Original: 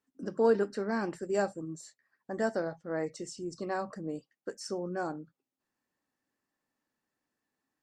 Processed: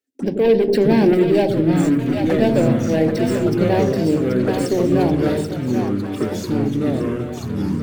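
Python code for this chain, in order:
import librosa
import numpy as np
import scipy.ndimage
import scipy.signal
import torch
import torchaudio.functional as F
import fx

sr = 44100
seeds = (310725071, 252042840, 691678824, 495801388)

p1 = scipy.signal.sosfilt(scipy.signal.butter(4, 78.0, 'highpass', fs=sr, output='sos'), x)
p2 = fx.leveller(p1, sr, passes=3)
p3 = fx.rider(p2, sr, range_db=10, speed_s=0.5)
p4 = p2 + (p3 * 10.0 ** (1.0 / 20.0))
p5 = fx.env_phaser(p4, sr, low_hz=170.0, high_hz=1300.0, full_db=-18.0)
p6 = p5 + fx.echo_split(p5, sr, split_hz=590.0, low_ms=87, high_ms=783, feedback_pct=52, wet_db=-5.0, dry=0)
p7 = fx.echo_pitch(p6, sr, ms=566, semitones=-4, count=3, db_per_echo=-3.0)
y = fx.env_flatten(p7, sr, amount_pct=50, at=(0.67, 1.13), fade=0.02)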